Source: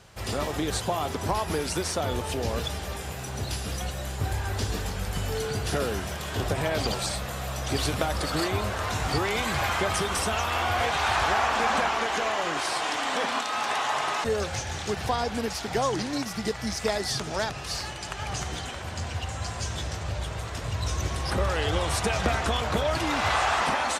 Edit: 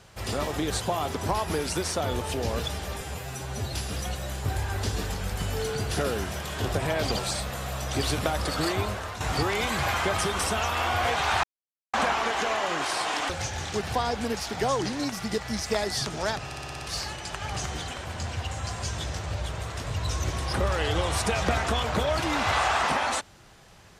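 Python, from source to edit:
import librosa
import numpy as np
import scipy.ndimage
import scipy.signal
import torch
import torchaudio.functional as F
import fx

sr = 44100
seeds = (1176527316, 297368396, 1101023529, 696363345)

y = fx.edit(x, sr, fx.stretch_span(start_s=3.01, length_s=0.49, factor=1.5),
    fx.fade_out_to(start_s=8.55, length_s=0.41, floor_db=-10.0),
    fx.silence(start_s=11.19, length_s=0.5),
    fx.cut(start_s=13.05, length_s=1.38),
    fx.stutter(start_s=17.59, slice_s=0.06, count=7), tone=tone)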